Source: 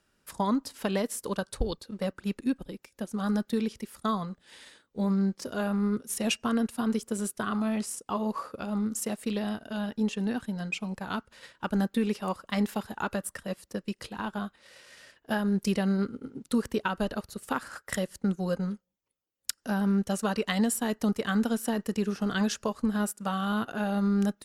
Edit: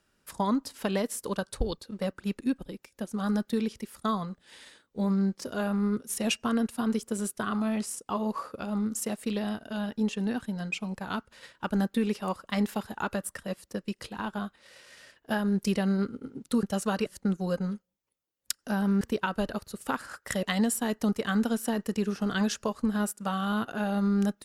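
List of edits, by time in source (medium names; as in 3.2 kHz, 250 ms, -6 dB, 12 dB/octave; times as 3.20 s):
16.63–18.05 s: swap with 20.00–20.43 s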